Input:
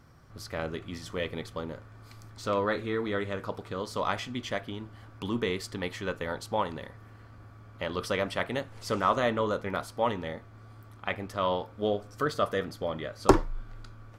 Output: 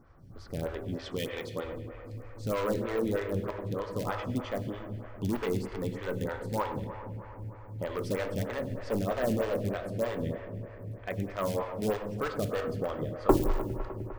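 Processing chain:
0:00.99–0:01.65: meter weighting curve D
0:08.46–0:11.21: gain on a spectral selection 740–1,500 Hz −13 dB
spectral tilt −2.5 dB per octave
noise that follows the level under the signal 35 dB
in parallel at −6.5 dB: wrap-around overflow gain 20.5 dB
on the sum: bucket-brigade delay 101 ms, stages 2,048, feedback 85%, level −13 dB
on a send at −8 dB: convolution reverb RT60 1.7 s, pre-delay 3 ms
on the sum: phaser with staggered stages 3.2 Hz
level −4.5 dB

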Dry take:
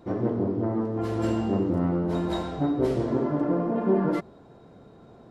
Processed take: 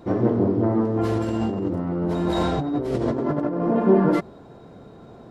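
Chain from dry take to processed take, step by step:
0:01.17–0:03.67: compressor whose output falls as the input rises −30 dBFS, ratio −1
level +6 dB

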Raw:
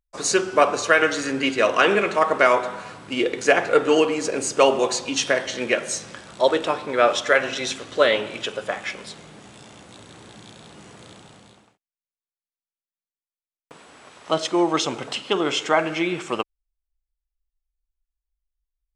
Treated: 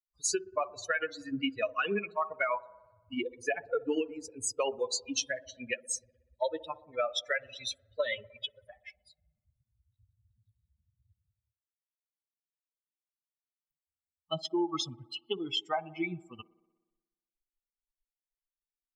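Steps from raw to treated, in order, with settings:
spectral dynamics exaggerated over time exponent 3
brickwall limiter −15 dBFS, peak gain reduction 7 dB
downward compressor, threshold −27 dBFS, peak gain reduction 8 dB
delay with a band-pass on its return 61 ms, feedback 70%, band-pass 460 Hz, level −18.5 dB

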